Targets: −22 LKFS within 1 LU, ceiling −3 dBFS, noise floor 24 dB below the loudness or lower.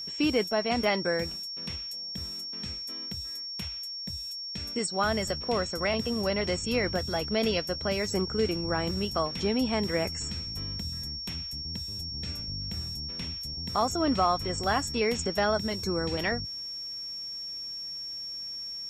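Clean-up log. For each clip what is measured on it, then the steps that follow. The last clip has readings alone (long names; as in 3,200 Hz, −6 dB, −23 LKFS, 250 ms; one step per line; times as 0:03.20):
crackle rate 20 per second; interfering tone 5,500 Hz; level of the tone −35 dBFS; integrated loudness −30.0 LKFS; sample peak −13.5 dBFS; target loudness −22.0 LKFS
→ click removal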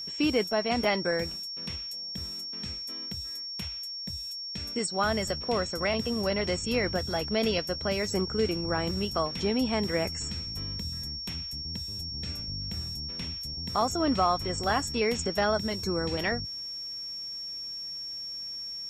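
crackle rate 0 per second; interfering tone 5,500 Hz; level of the tone −35 dBFS
→ notch filter 5,500 Hz, Q 30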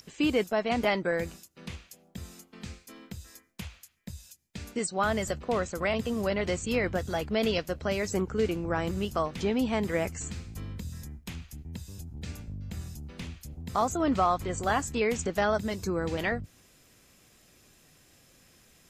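interfering tone none found; integrated loudness −30.0 LKFS; sample peak −14.0 dBFS; target loudness −22.0 LKFS
→ level +8 dB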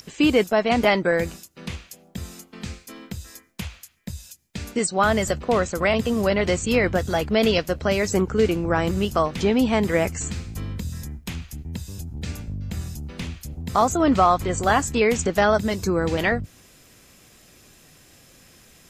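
integrated loudness −22.0 LKFS; sample peak −6.0 dBFS; background noise floor −53 dBFS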